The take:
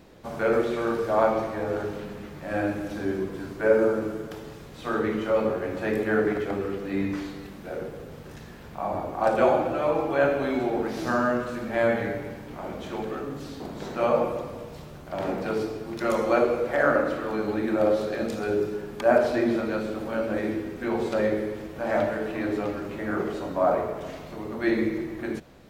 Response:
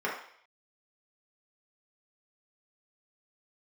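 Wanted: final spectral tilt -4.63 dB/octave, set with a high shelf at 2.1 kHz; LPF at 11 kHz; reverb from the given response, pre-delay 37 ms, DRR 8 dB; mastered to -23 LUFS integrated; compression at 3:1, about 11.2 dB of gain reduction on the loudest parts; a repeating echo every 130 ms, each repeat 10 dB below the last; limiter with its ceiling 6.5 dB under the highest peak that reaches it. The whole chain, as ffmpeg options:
-filter_complex "[0:a]lowpass=11000,highshelf=f=2100:g=4.5,acompressor=threshold=0.0316:ratio=3,alimiter=limit=0.0708:level=0:latency=1,aecho=1:1:130|260|390|520:0.316|0.101|0.0324|0.0104,asplit=2[s0][s1];[1:a]atrim=start_sample=2205,adelay=37[s2];[s1][s2]afir=irnorm=-1:irlink=0,volume=0.133[s3];[s0][s3]amix=inputs=2:normalize=0,volume=3.16"

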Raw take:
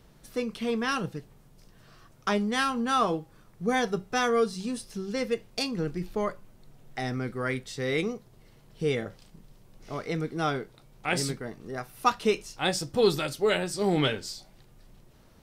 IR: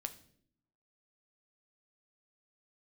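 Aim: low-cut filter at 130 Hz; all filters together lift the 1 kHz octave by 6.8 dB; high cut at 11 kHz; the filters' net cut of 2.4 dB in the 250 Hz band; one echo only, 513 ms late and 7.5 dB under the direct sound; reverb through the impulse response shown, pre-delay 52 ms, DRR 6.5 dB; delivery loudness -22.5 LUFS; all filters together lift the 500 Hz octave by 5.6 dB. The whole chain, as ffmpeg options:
-filter_complex "[0:a]highpass=130,lowpass=11000,equalizer=f=250:t=o:g=-5,equalizer=f=500:t=o:g=6.5,equalizer=f=1000:t=o:g=7.5,aecho=1:1:513:0.422,asplit=2[s0][s1];[1:a]atrim=start_sample=2205,adelay=52[s2];[s1][s2]afir=irnorm=-1:irlink=0,volume=0.596[s3];[s0][s3]amix=inputs=2:normalize=0,volume=1.19"

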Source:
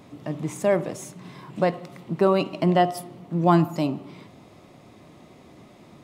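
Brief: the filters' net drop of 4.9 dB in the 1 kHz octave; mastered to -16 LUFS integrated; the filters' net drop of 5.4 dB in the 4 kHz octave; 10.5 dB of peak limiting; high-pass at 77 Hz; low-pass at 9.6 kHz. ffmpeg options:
-af "highpass=77,lowpass=9600,equalizer=f=1000:t=o:g=-7.5,equalizer=f=4000:t=o:g=-7.5,volume=6.31,alimiter=limit=0.631:level=0:latency=1"

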